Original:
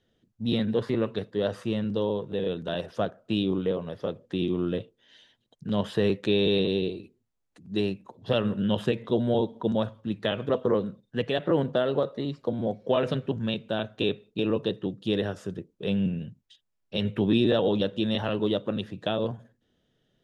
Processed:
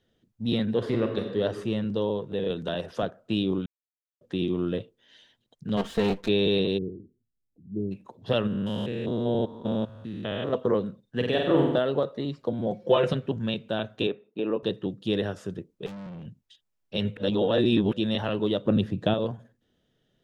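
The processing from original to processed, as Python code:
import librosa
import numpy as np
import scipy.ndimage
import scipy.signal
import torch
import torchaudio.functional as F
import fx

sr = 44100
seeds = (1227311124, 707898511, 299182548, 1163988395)

y = fx.reverb_throw(x, sr, start_s=0.77, length_s=0.62, rt60_s=1.3, drr_db=4.0)
y = fx.band_squash(y, sr, depth_pct=70, at=(2.5, 3.03))
y = fx.lower_of_two(y, sr, delay_ms=4.4, at=(5.76, 6.27), fade=0.02)
y = fx.gaussian_blur(y, sr, sigma=21.0, at=(6.77, 7.91), fade=0.02)
y = fx.spec_steps(y, sr, hold_ms=200, at=(8.47, 10.53))
y = fx.room_flutter(y, sr, wall_m=8.3, rt60_s=0.86, at=(11.16, 11.79))
y = fx.comb(y, sr, ms=5.7, depth=0.98, at=(12.71, 13.13))
y = fx.bandpass_edges(y, sr, low_hz=260.0, high_hz=2000.0, at=(14.07, 14.63))
y = fx.tube_stage(y, sr, drive_db=38.0, bias=0.35, at=(15.86, 16.26))
y = fx.low_shelf(y, sr, hz=430.0, db=10.5, at=(18.65, 19.14))
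y = fx.edit(y, sr, fx.silence(start_s=3.66, length_s=0.55),
    fx.reverse_span(start_s=17.17, length_s=0.76), tone=tone)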